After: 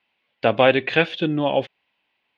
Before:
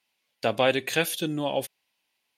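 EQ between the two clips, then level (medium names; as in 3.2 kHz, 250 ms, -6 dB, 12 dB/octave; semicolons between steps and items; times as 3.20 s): low-pass 3.2 kHz 24 dB/octave; +7.0 dB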